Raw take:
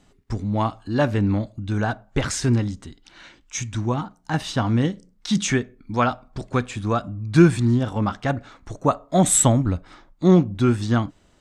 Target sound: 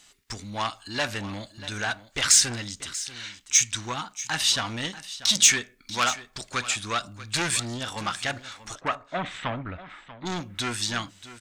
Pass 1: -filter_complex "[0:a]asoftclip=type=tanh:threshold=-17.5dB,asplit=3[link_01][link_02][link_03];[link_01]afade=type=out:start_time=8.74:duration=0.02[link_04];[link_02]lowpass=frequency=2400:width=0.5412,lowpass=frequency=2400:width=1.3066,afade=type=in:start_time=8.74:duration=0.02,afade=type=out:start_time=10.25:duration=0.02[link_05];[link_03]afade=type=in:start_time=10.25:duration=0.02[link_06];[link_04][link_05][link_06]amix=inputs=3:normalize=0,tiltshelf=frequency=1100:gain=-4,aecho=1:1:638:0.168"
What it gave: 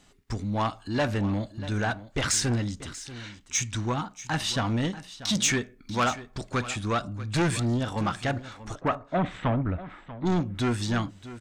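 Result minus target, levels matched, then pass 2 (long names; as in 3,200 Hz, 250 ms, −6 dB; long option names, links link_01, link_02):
1,000 Hz band +3.5 dB
-filter_complex "[0:a]asoftclip=type=tanh:threshold=-17.5dB,asplit=3[link_01][link_02][link_03];[link_01]afade=type=out:start_time=8.74:duration=0.02[link_04];[link_02]lowpass=frequency=2400:width=0.5412,lowpass=frequency=2400:width=1.3066,afade=type=in:start_time=8.74:duration=0.02,afade=type=out:start_time=10.25:duration=0.02[link_05];[link_03]afade=type=in:start_time=10.25:duration=0.02[link_06];[link_04][link_05][link_06]amix=inputs=3:normalize=0,tiltshelf=frequency=1100:gain=-13.5,aecho=1:1:638:0.168"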